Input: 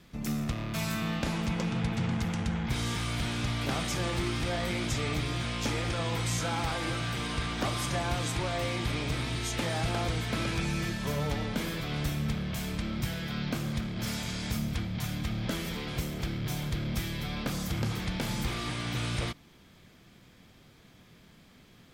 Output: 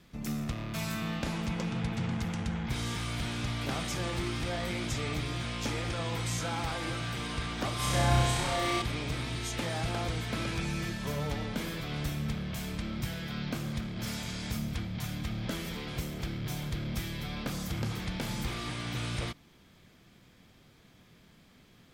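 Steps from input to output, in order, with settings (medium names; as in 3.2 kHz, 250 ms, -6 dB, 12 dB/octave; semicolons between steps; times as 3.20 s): 7.76–8.82 s: flutter echo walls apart 5.4 m, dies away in 1.2 s; trim -2.5 dB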